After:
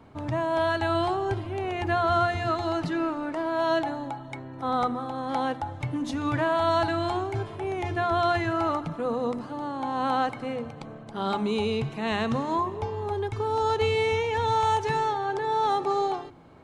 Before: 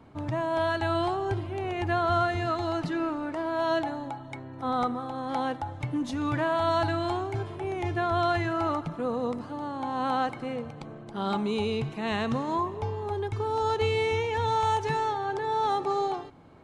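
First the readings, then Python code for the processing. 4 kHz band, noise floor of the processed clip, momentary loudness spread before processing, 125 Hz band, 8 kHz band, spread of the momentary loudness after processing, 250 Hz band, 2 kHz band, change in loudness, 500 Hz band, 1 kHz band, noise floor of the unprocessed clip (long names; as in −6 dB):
+2.0 dB, −42 dBFS, 8 LU, +0.5 dB, +2.0 dB, 9 LU, +1.0 dB, +2.0 dB, +1.5 dB, +2.0 dB, +2.0 dB, −43 dBFS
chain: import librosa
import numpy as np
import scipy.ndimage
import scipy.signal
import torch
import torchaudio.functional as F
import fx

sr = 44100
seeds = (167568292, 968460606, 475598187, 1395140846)

y = fx.hum_notches(x, sr, base_hz=50, count=7)
y = y * 10.0 ** (2.0 / 20.0)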